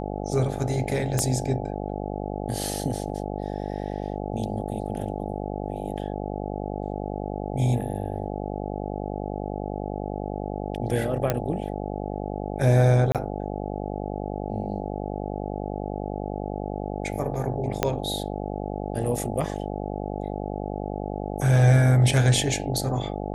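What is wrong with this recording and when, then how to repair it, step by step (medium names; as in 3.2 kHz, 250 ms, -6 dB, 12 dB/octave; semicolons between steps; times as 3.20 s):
buzz 50 Hz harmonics 17 -31 dBFS
1.19 s: pop -10 dBFS
11.30 s: pop -9 dBFS
13.12–13.15 s: dropout 27 ms
17.83 s: pop -6 dBFS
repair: de-click; de-hum 50 Hz, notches 17; interpolate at 13.12 s, 27 ms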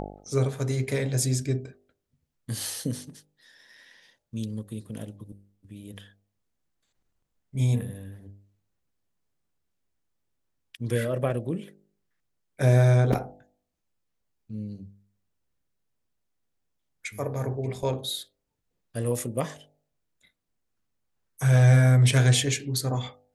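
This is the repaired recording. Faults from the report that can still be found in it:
1.19 s: pop
17.83 s: pop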